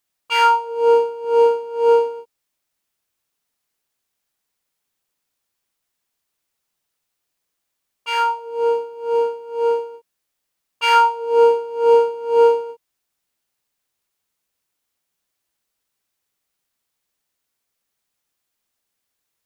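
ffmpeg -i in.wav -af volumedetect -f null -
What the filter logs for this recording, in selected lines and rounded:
mean_volume: -22.3 dB
max_volume: -3.8 dB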